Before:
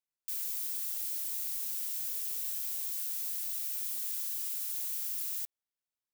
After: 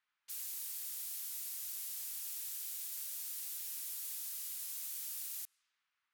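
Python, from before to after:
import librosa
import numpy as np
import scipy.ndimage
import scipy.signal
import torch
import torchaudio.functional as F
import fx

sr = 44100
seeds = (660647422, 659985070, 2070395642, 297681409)

y = fx.dmg_noise_band(x, sr, seeds[0], low_hz=1100.0, high_hz=12000.0, level_db=-76.0)
y = fx.env_lowpass(y, sr, base_hz=2100.0, full_db=-36.5)
y = y * 10.0 ** (-3.0 / 20.0)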